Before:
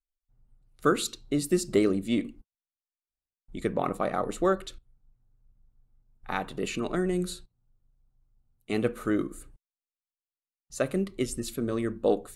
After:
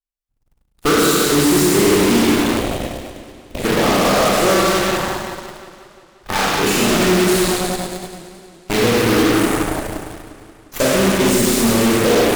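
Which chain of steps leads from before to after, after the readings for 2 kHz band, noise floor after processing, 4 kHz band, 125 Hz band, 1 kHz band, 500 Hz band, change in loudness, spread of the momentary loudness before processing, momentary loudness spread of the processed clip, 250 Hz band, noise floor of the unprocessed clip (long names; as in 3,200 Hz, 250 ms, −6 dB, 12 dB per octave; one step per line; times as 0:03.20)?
+18.5 dB, −63 dBFS, +21.0 dB, +14.0 dB, +16.0 dB, +13.5 dB, +14.0 dB, 10 LU, 15 LU, +14.0 dB, below −85 dBFS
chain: in parallel at +3 dB: speech leveller 0.5 s
on the sum: four-comb reverb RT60 2.3 s, combs from 27 ms, DRR −7 dB
floating-point word with a short mantissa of 2 bits
soft clipping −10.5 dBFS, distortion −13 dB
harmonic generator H 7 −19 dB, 8 −10 dB, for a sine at −10.5 dBFS
feedback echo with a swinging delay time 176 ms, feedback 65%, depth 126 cents, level −15 dB
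level +1 dB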